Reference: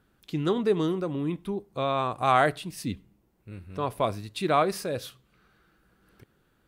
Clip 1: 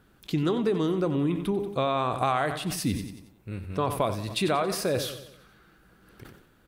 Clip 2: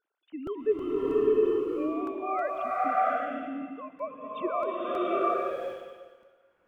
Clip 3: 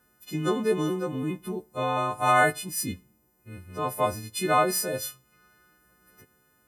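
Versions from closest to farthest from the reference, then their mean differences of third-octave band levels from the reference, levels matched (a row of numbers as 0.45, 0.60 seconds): 3, 1, 2; 4.5, 6.5, 13.5 decibels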